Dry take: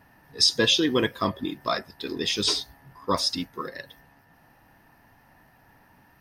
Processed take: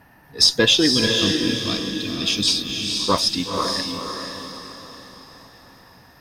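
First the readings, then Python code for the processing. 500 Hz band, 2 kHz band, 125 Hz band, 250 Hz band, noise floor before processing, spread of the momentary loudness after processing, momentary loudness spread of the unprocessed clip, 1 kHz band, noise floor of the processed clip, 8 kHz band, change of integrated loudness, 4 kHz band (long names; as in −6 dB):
+4.0 dB, +5.5 dB, +7.5 dB, +6.5 dB, −59 dBFS, 17 LU, 17 LU, +3.5 dB, −51 dBFS, +7.0 dB, +5.5 dB, +7.0 dB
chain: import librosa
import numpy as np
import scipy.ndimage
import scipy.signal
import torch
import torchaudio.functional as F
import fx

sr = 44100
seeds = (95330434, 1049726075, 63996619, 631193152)

y = fx.cheby_harmonics(x, sr, harmonics=(6,), levels_db=(-31,), full_scale_db=-6.0)
y = fx.spec_box(y, sr, start_s=0.93, length_s=2.07, low_hz=330.0, high_hz=2200.0, gain_db=-14)
y = fx.echo_diffused(y, sr, ms=498, feedback_pct=44, wet_db=-3.5)
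y = y * librosa.db_to_amplitude(5.0)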